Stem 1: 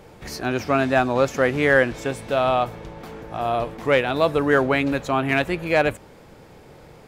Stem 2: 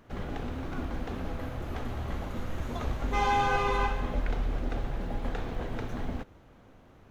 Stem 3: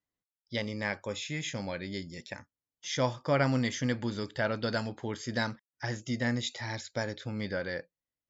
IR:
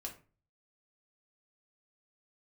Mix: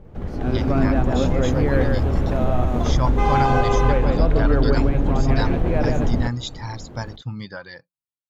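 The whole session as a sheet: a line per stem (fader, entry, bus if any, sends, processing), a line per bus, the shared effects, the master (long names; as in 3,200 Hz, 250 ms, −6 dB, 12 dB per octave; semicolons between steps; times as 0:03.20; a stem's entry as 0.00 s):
−9.5 dB, 0.00 s, no send, echo send −14.5 dB, spectral tilt −4.5 dB per octave; automatic ducking −11 dB, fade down 1.00 s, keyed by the third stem
+0.5 dB, 0.05 s, no send, no echo send, tilt shelving filter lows +6.5 dB, about 870 Hz; downward compressor 2 to 1, threshold −28 dBFS, peak gain reduction 6.5 dB
−9.0 dB, 0.00 s, no send, no echo send, reverb reduction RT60 1.7 s; graphic EQ with 10 bands 125 Hz +10 dB, 500 Hz −8 dB, 1,000 Hz +11 dB, 2,000 Hz −6 dB, 4,000 Hz +4 dB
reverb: not used
echo: single-tap delay 149 ms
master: automatic gain control gain up to 10.5 dB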